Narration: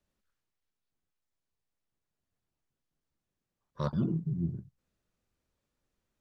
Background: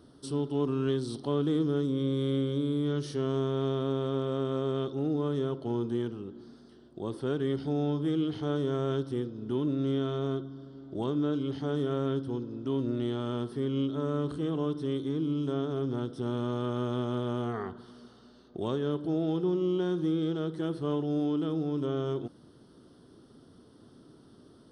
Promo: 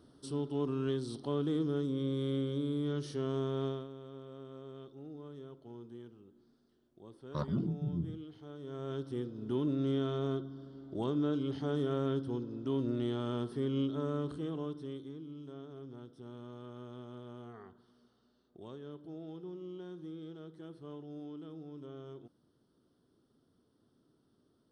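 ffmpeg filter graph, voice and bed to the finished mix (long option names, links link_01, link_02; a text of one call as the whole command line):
ffmpeg -i stem1.wav -i stem2.wav -filter_complex "[0:a]adelay=3550,volume=-3.5dB[link_01];[1:a]volume=10dB,afade=type=out:start_time=3.65:duration=0.23:silence=0.223872,afade=type=in:start_time=8.58:duration=0.85:silence=0.177828,afade=type=out:start_time=13.82:duration=1.41:silence=0.211349[link_02];[link_01][link_02]amix=inputs=2:normalize=0" out.wav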